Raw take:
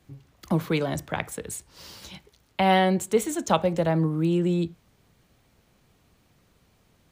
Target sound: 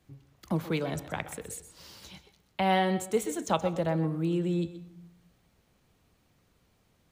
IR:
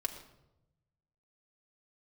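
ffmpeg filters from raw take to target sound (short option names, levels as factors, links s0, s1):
-filter_complex "[0:a]asplit=2[s0][s1];[1:a]atrim=start_sample=2205,asetrate=52920,aresample=44100,adelay=125[s2];[s1][s2]afir=irnorm=-1:irlink=0,volume=0.251[s3];[s0][s3]amix=inputs=2:normalize=0,volume=0.531"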